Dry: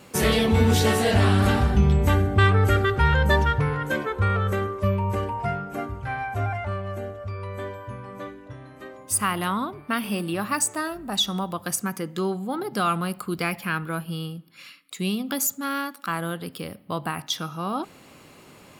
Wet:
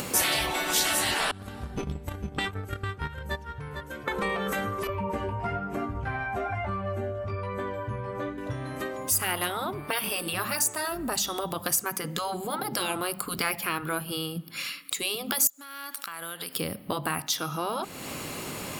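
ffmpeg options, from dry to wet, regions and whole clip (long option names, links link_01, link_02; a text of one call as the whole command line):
ffmpeg -i in.wav -filter_complex "[0:a]asettb=1/sr,asplit=3[link_01][link_02][link_03];[link_01]atrim=end=1.314[link_04];[link_02]atrim=start=1.31:end=4.08,asetpts=PTS-STARTPTS,afade=type=in:duration=0.004:curve=qsin,afade=type=out:start_time=2.766:duration=0.004:curve=qsin,agate=range=-28dB:threshold=-15dB:ratio=16:release=100:detection=peak,aecho=1:1:450:0.2,atrim=end_sample=122157[link_05];[link_03]atrim=start=4.076[link_06];[link_04][link_05]acrossfade=duration=0.004:curve1=hsin:curve2=qsin[link_07];[link_07][link_06]acrossfade=duration=0.004:curve1=qsin:curve2=hsin,asettb=1/sr,asplit=3[link_08][link_09][link_10];[link_08]atrim=end=4.874[link_11];[link_09]atrim=start=4.87:end=8.38,asetpts=PTS-STARTPTS,afade=type=in:duration=0.004:curve=qsin,afade=type=out:start_time=3.506:duration=0.004:curve=qsin,lowpass=frequency=2000:poles=1,flanger=delay=16:depth=2.5:speed=1.1[link_12];[link_10]atrim=start=8.376[link_13];[link_11][link_12]acrossfade=duration=0.004:curve1=hsin:curve2=qsin[link_14];[link_14][link_13]acrossfade=duration=0.004:curve1=qsin:curve2=hsin,asettb=1/sr,asplit=3[link_15][link_16][link_17];[link_15]atrim=end=15.474[link_18];[link_16]atrim=start=15.47:end=16.56,asetpts=PTS-STARTPTS,afade=type=in:duration=0.004:curve=qsin,afade=type=out:start_time=1.086:duration=0.004:curve=qsin,highpass=frequency=1500:poles=1,acompressor=threshold=-44dB:ratio=8:attack=3.2:release=140:knee=1:detection=peak[link_19];[link_17]atrim=start=16.556[link_20];[link_18][link_19]acrossfade=duration=0.004:curve1=hsin:curve2=qsin[link_21];[link_21][link_20]acrossfade=duration=0.004:curve1=qsin:curve2=hsin,highshelf=frequency=6000:gain=8,afftfilt=real='re*lt(hypot(re,im),0.224)':imag='im*lt(hypot(re,im),0.224)':win_size=1024:overlap=0.75,acompressor=mode=upward:threshold=-24dB:ratio=2.5" out.wav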